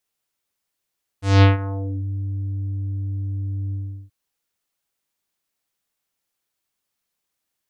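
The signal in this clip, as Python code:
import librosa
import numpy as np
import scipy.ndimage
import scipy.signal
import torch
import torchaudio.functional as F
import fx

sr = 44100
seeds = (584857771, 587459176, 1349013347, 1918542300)

y = fx.sub_voice(sr, note=43, wave='square', cutoff_hz=230.0, q=1.1, env_oct=5.5, env_s=0.81, attack_ms=202.0, decay_s=0.15, sustain_db=-16.5, release_s=0.37, note_s=2.51, slope=24)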